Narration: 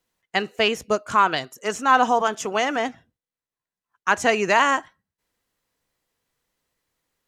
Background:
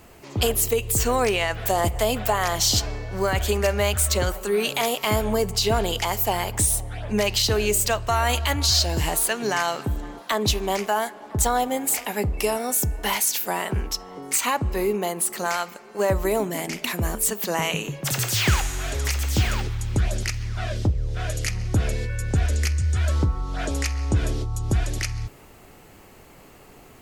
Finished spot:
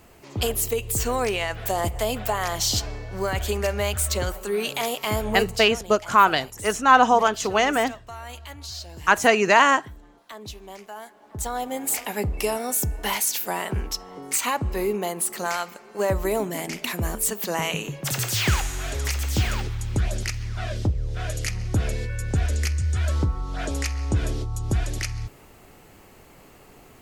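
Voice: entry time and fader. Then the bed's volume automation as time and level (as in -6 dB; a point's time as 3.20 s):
5.00 s, +2.0 dB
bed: 5.49 s -3 dB
5.79 s -16.5 dB
10.88 s -16.5 dB
11.94 s -1.5 dB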